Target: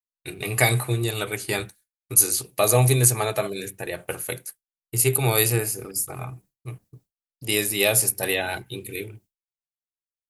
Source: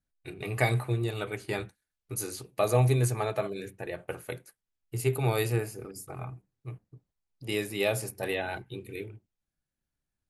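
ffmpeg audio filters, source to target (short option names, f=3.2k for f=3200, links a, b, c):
-af "agate=range=-33dB:threshold=-53dB:ratio=3:detection=peak,crystalizer=i=3.5:c=0,volume=4.5dB"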